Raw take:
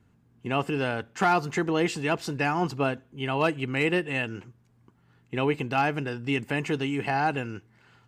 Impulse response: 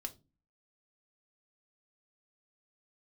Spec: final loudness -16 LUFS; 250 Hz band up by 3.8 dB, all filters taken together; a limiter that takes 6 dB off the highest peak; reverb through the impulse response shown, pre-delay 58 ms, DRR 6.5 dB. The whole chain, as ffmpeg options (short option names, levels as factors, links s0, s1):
-filter_complex "[0:a]equalizer=f=250:t=o:g=5,alimiter=limit=0.141:level=0:latency=1,asplit=2[s0][s1];[1:a]atrim=start_sample=2205,adelay=58[s2];[s1][s2]afir=irnorm=-1:irlink=0,volume=0.631[s3];[s0][s3]amix=inputs=2:normalize=0,volume=3.76"